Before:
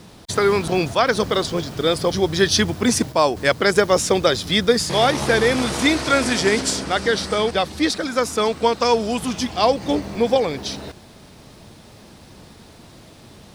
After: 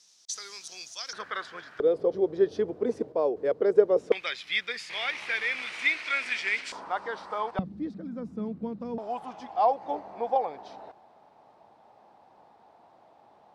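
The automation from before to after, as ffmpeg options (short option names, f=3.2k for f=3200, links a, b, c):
-af "asetnsamples=n=441:p=0,asendcmd='1.13 bandpass f 1600;1.8 bandpass f 450;4.12 bandpass f 2300;6.72 bandpass f 950;7.59 bandpass f 190;8.98 bandpass f 800',bandpass=f=6k:t=q:w=4.3:csg=0"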